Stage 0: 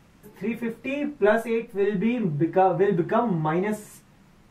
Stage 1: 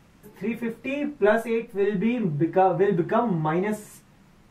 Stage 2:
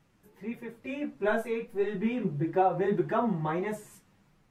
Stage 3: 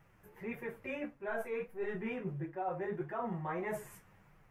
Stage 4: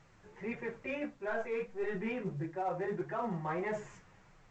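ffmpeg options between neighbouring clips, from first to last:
-af anull
-af "dynaudnorm=f=280:g=7:m=2.24,flanger=delay=6:depth=6:regen=32:speed=1.6:shape=triangular,volume=0.422"
-af "equalizer=f=250:t=o:w=1:g=-10,equalizer=f=2000:t=o:w=1:g=3,equalizer=f=4000:t=o:w=1:g=-11,equalizer=f=8000:t=o:w=1:g=-7,areverse,acompressor=threshold=0.0112:ratio=8,areverse,volume=1.58"
-filter_complex "[0:a]bandreject=f=50:t=h:w=6,bandreject=f=100:t=h:w=6,bandreject=f=150:t=h:w=6,bandreject=f=200:t=h:w=6,asplit=2[s0][s1];[s1]asoftclip=type=hard:threshold=0.0178,volume=0.316[s2];[s0][s2]amix=inputs=2:normalize=0" -ar 16000 -c:a pcm_alaw

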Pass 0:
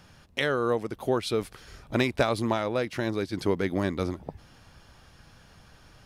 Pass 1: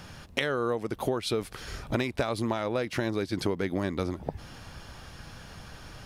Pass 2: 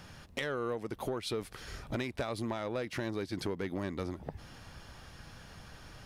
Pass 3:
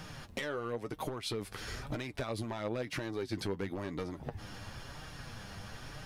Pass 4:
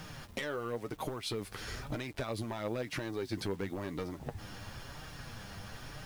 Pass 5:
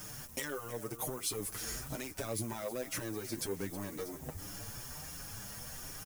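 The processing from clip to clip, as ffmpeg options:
-af "acompressor=threshold=0.0178:ratio=5,volume=2.66"
-af "equalizer=f=1900:w=7.3:g=2,asoftclip=type=tanh:threshold=0.106,volume=0.531"
-af "volume=28.2,asoftclip=hard,volume=0.0355,acompressor=threshold=0.0112:ratio=6,flanger=delay=6.4:depth=3.8:regen=39:speed=0.99:shape=sinusoidal,volume=2.66"
-af "acrusher=bits=9:mix=0:aa=0.000001"
-filter_complex "[0:a]aexciter=amount=2.9:drive=9.3:freq=5700,aecho=1:1:318|636|954|1272:0.178|0.0711|0.0285|0.0114,asplit=2[s0][s1];[s1]adelay=6.7,afreqshift=1.3[s2];[s0][s2]amix=inputs=2:normalize=1"

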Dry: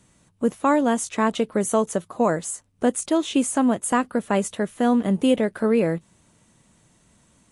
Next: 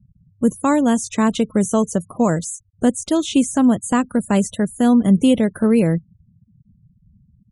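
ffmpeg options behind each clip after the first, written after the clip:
-filter_complex "[0:a]acrossover=split=5200[s0][s1];[s1]acompressor=threshold=0.00708:ratio=4:attack=1:release=60[s2];[s0][s2]amix=inputs=2:normalize=0,bass=f=250:g=12,treble=f=4000:g=13,afftfilt=real='re*gte(hypot(re,im),0.0178)':imag='im*gte(hypot(re,im),0.0178)':win_size=1024:overlap=0.75"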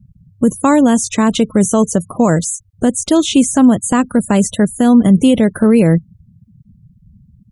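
-af "alimiter=level_in=2.82:limit=0.891:release=50:level=0:latency=1,volume=0.891"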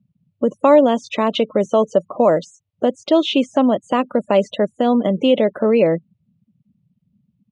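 -af "highpass=350,equalizer=f=580:t=q:w=4:g=9,equalizer=f=1600:t=q:w=4:g=-9,equalizer=f=2800:t=q:w=4:g=3,lowpass=f=3900:w=0.5412,lowpass=f=3900:w=1.3066,volume=0.841"

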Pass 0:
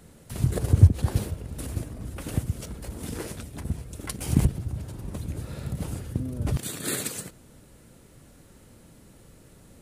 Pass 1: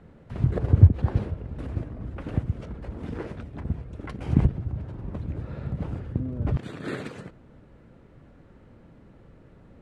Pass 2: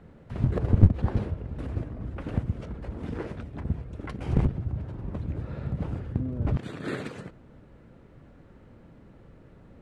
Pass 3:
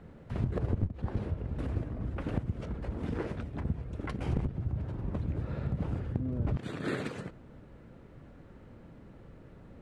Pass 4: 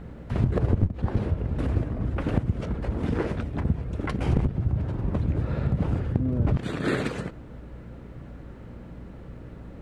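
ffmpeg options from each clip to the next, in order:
-af "lowpass=1900,volume=1.12"
-af "aeval=exprs='clip(val(0),-1,0.0841)':c=same"
-af "acompressor=threshold=0.0447:ratio=6"
-af "aeval=exprs='val(0)+0.00282*(sin(2*PI*60*n/s)+sin(2*PI*2*60*n/s)/2+sin(2*PI*3*60*n/s)/3+sin(2*PI*4*60*n/s)/4+sin(2*PI*5*60*n/s)/5)':c=same,volume=2.51"

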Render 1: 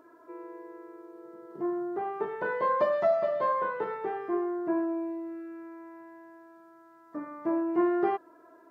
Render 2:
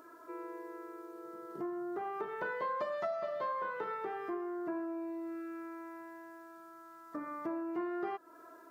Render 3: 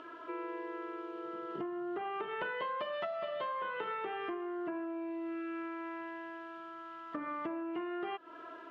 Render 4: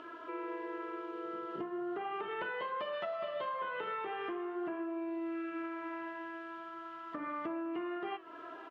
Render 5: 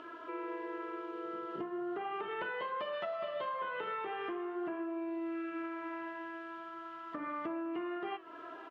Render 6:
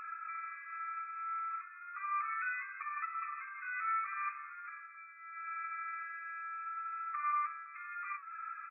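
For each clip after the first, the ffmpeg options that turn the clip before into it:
-af "equalizer=f=1300:t=o:w=0.21:g=6.5,acompressor=threshold=0.0141:ratio=3,highshelf=f=2500:g=11.5,volume=0.841"
-af "acompressor=threshold=0.00794:ratio=4,lowpass=f=3000:t=q:w=5.9,volume=1.78"
-filter_complex "[0:a]asplit=2[s0][s1];[s1]alimiter=level_in=2.99:limit=0.0631:level=0:latency=1,volume=0.335,volume=1[s2];[s0][s2]amix=inputs=2:normalize=0,flanger=delay=8.8:depth=8.8:regen=-72:speed=0.39:shape=sinusoidal,aecho=1:1:511:0.106,volume=0.891"
-af anull
-af "asoftclip=type=tanh:threshold=0.0211,equalizer=f=1700:w=1.8:g=-10,afftfilt=real='re*between(b*sr/4096,1100,2600)':imag='im*between(b*sr/4096,1100,2600)':win_size=4096:overlap=0.75,volume=4.73"

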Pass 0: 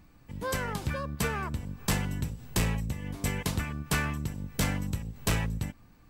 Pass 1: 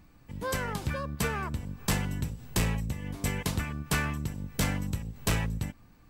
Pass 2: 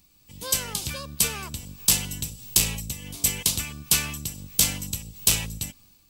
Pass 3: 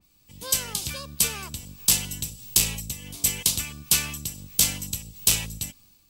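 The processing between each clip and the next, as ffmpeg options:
-af anull
-af "dynaudnorm=f=140:g=5:m=1.88,aexciter=amount=5.8:drive=6.8:freq=2600,volume=0.355"
-af "adynamicequalizer=threshold=0.0141:dfrequency=2600:dqfactor=0.7:tfrequency=2600:tqfactor=0.7:attack=5:release=100:ratio=0.375:range=1.5:mode=boostabove:tftype=highshelf,volume=0.794"

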